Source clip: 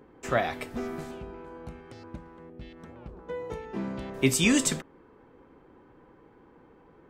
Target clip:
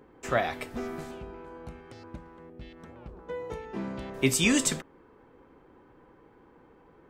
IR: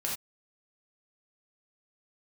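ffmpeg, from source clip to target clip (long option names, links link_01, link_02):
-af "equalizer=frequency=190:width_type=o:width=2.2:gain=-2"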